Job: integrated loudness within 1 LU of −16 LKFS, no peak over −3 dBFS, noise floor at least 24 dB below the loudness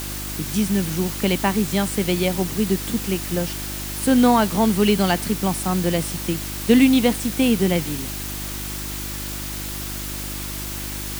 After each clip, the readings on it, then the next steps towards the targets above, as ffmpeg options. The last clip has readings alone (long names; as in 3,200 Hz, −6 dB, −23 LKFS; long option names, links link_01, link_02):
mains hum 50 Hz; hum harmonics up to 350 Hz; level of the hum −31 dBFS; background noise floor −30 dBFS; target noise floor −46 dBFS; integrated loudness −21.5 LKFS; sample peak −4.5 dBFS; target loudness −16.0 LKFS
→ -af "bandreject=frequency=50:width_type=h:width=4,bandreject=frequency=100:width_type=h:width=4,bandreject=frequency=150:width_type=h:width=4,bandreject=frequency=200:width_type=h:width=4,bandreject=frequency=250:width_type=h:width=4,bandreject=frequency=300:width_type=h:width=4,bandreject=frequency=350:width_type=h:width=4"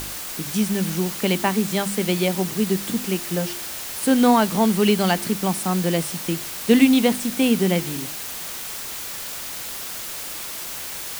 mains hum none found; background noise floor −32 dBFS; target noise floor −46 dBFS
→ -af "afftdn=noise_reduction=14:noise_floor=-32"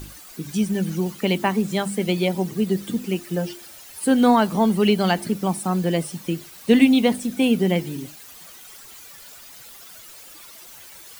background noise floor −44 dBFS; target noise floor −46 dBFS
→ -af "afftdn=noise_reduction=6:noise_floor=-44"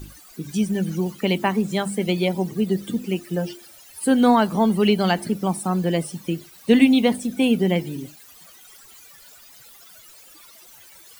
background noise floor −48 dBFS; integrated loudness −21.5 LKFS; sample peak −4.0 dBFS; target loudness −16.0 LKFS
→ -af "volume=5.5dB,alimiter=limit=-3dB:level=0:latency=1"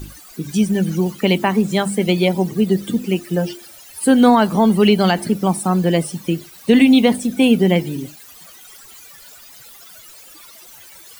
integrated loudness −16.5 LKFS; sample peak −3.0 dBFS; background noise floor −42 dBFS